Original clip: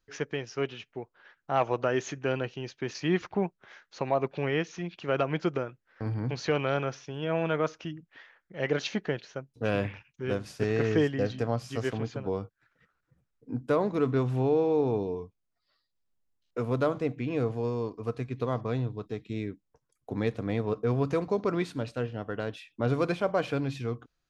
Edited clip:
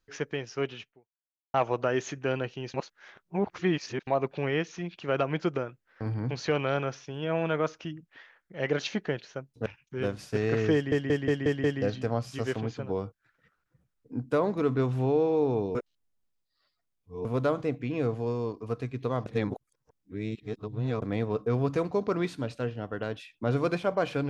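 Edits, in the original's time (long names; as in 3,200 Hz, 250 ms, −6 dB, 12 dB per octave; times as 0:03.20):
0:00.83–0:01.54: fade out exponential
0:02.74–0:04.07: reverse
0:09.66–0:09.93: remove
0:11.01: stutter 0.18 s, 6 plays
0:15.12–0:16.62: reverse
0:18.63–0:20.39: reverse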